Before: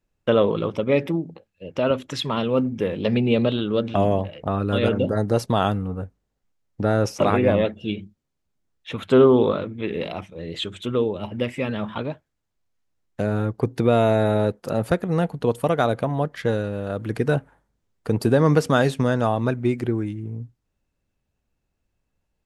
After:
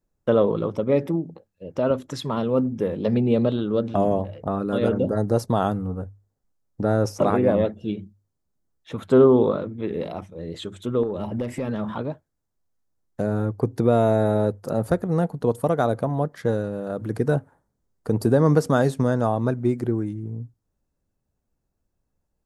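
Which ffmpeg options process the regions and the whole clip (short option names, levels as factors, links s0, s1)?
-filter_complex "[0:a]asettb=1/sr,asplit=3[s0][s1][s2];[s0]atrim=end=11.034[s3];[s1]atrim=start=11.03:end=11.96,asetpts=PTS-STARTPTS,afade=t=in:d=0.004:c=qsin,afade=t=out:st=0.926:d=0.004:c=qsin,acompressor=threshold=0.0355:ratio=4:attack=3.2:release=140:knee=1:detection=peak,aeval=exprs='0.112*sin(PI/2*1.41*val(0)/0.112)':c=same[s4];[s2]atrim=start=11.956[s5];[s3][s4]acrossfade=d=0.004:c1=hsin:c2=qsin[s6];[s6][s5]acrossfade=d=0.004:c1=qsin:c2=hsin,equalizer=f=2700:w=1.1:g=-12.5,bandreject=f=50:t=h:w=6,bandreject=f=100:t=h:w=6"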